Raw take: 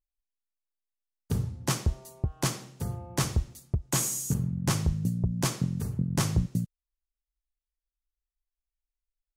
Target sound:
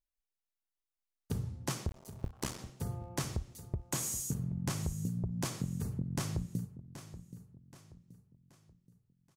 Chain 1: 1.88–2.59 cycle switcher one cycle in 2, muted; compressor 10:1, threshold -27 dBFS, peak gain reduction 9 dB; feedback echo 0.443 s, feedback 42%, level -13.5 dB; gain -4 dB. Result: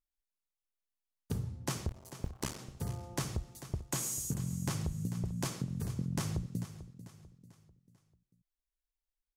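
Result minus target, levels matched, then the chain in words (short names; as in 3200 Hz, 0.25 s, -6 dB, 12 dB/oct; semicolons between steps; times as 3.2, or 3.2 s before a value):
echo 0.334 s early
1.88–2.59 cycle switcher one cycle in 2, muted; compressor 10:1, threshold -27 dBFS, peak gain reduction 9 dB; feedback echo 0.777 s, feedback 42%, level -13.5 dB; gain -4 dB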